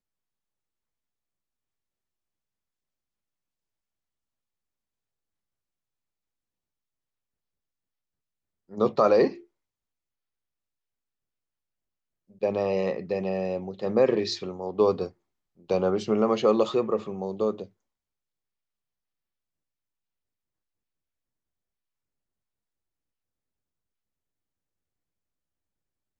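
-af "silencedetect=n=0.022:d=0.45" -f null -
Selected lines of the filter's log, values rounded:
silence_start: 0.00
silence_end: 8.74 | silence_duration: 8.74
silence_start: 9.32
silence_end: 12.43 | silence_duration: 3.11
silence_start: 15.07
silence_end: 15.70 | silence_duration: 0.62
silence_start: 17.63
silence_end: 26.20 | silence_duration: 8.56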